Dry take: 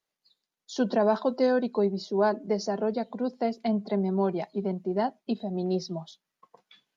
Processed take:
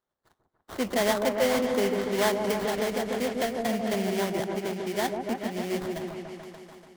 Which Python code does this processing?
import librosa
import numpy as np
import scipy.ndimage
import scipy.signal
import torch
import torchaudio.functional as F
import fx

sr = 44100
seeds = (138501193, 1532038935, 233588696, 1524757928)

p1 = fx.low_shelf(x, sr, hz=330.0, db=-6.5)
p2 = fx.sample_hold(p1, sr, seeds[0], rate_hz=2600.0, jitter_pct=20)
p3 = p2 + fx.echo_opening(p2, sr, ms=145, hz=750, octaves=1, feedback_pct=70, wet_db=-3, dry=0)
y = fx.band_squash(p3, sr, depth_pct=100, at=(2.44, 4.4))